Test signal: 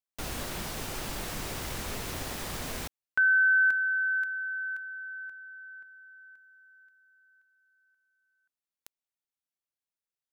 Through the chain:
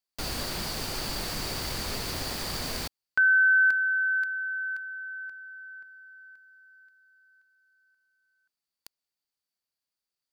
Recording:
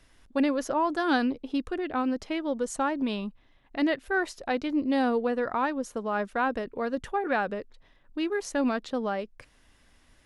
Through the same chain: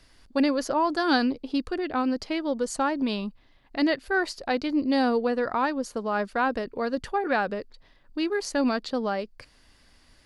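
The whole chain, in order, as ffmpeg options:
-af "equalizer=f=4600:t=o:w=0.21:g=13,volume=1.26"

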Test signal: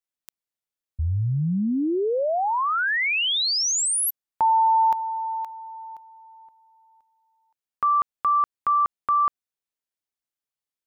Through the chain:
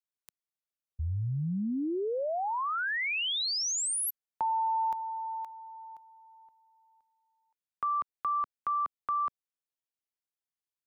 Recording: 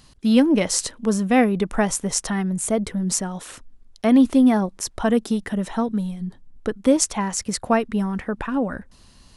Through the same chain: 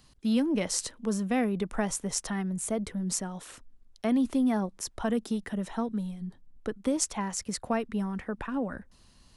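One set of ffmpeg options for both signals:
-filter_complex "[0:a]acrossover=split=210|4400[s0][s1][s2];[s1]acompressor=threshold=0.0891:ratio=6:attack=20:release=37:knee=2.83:detection=peak[s3];[s0][s3][s2]amix=inputs=3:normalize=0,volume=0.398"

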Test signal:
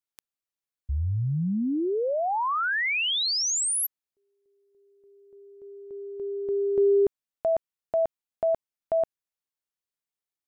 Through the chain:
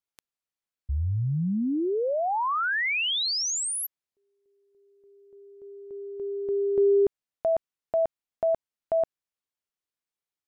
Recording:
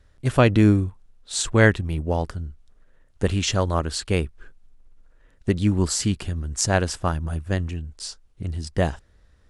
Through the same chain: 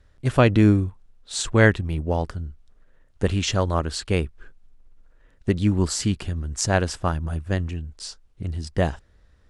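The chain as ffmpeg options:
-af "highshelf=f=9000:g=-7"

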